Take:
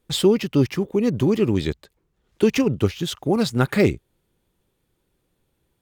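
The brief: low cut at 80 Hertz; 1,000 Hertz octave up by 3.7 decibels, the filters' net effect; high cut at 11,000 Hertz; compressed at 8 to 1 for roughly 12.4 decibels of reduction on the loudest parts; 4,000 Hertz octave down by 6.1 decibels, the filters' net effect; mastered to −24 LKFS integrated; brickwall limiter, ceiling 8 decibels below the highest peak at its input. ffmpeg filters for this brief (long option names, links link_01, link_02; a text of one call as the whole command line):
ffmpeg -i in.wav -af "highpass=80,lowpass=11000,equalizer=frequency=1000:width_type=o:gain=5.5,equalizer=frequency=4000:width_type=o:gain=-8,acompressor=threshold=-24dB:ratio=8,volume=8.5dB,alimiter=limit=-13dB:level=0:latency=1" out.wav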